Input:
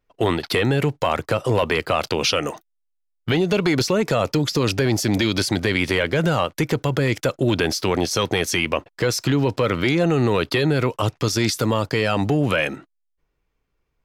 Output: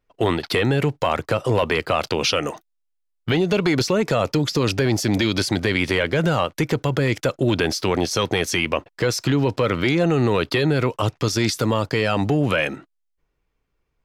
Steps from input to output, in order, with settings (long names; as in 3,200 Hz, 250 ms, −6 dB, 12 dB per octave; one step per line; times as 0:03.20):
high-shelf EQ 10,000 Hz −5 dB